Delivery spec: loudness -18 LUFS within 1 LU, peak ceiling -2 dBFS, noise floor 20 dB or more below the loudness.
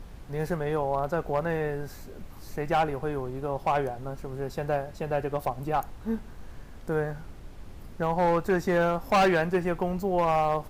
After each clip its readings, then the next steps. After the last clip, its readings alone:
clipped samples 1.2%; clipping level -18.0 dBFS; noise floor -45 dBFS; noise floor target -49 dBFS; loudness -28.5 LUFS; peak level -18.0 dBFS; loudness target -18.0 LUFS
-> clip repair -18 dBFS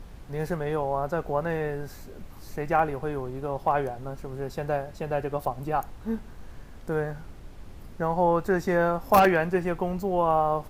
clipped samples 0.0%; noise floor -45 dBFS; noise floor target -48 dBFS
-> noise print and reduce 6 dB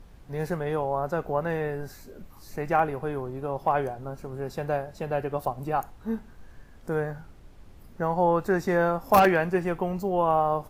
noise floor -50 dBFS; loudness -27.0 LUFS; peak level -9.0 dBFS; loudness target -18.0 LUFS
-> trim +9 dB; peak limiter -2 dBFS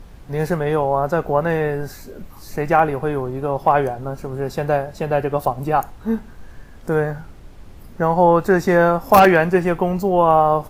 loudness -18.5 LUFS; peak level -2.0 dBFS; noise floor -41 dBFS

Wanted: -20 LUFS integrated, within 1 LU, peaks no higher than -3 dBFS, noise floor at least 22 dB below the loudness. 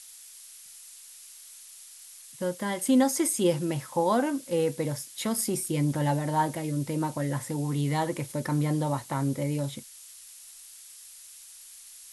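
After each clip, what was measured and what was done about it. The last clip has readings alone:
noise floor -49 dBFS; noise floor target -50 dBFS; loudness -28.0 LUFS; peak level -12.5 dBFS; loudness target -20.0 LUFS
-> noise print and reduce 6 dB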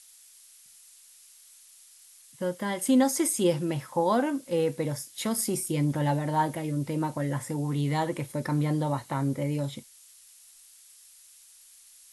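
noise floor -55 dBFS; loudness -28.0 LUFS; peak level -12.5 dBFS; loudness target -20.0 LUFS
-> trim +8 dB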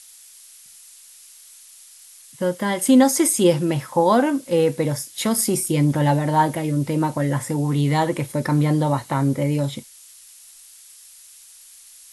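loudness -20.0 LUFS; peak level -4.5 dBFS; noise floor -47 dBFS

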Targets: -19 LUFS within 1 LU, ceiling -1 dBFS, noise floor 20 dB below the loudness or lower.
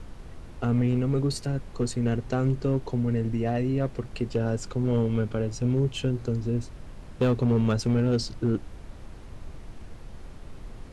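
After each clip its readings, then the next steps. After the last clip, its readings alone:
clipped samples 1.0%; clipping level -17.5 dBFS; noise floor -44 dBFS; noise floor target -47 dBFS; loudness -27.0 LUFS; peak level -17.5 dBFS; loudness target -19.0 LUFS
-> clip repair -17.5 dBFS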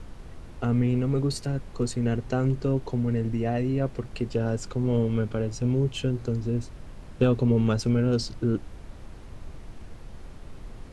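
clipped samples 0.0%; noise floor -44 dBFS; noise floor target -47 dBFS
-> noise print and reduce 6 dB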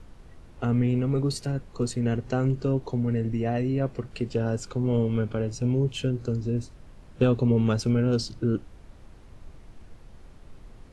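noise floor -50 dBFS; loudness -26.5 LUFS; peak level -9.5 dBFS; loudness target -19.0 LUFS
-> trim +7.5 dB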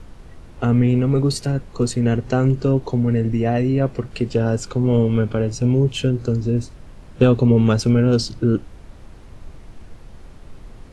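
loudness -19.0 LUFS; peak level -2.0 dBFS; noise floor -42 dBFS

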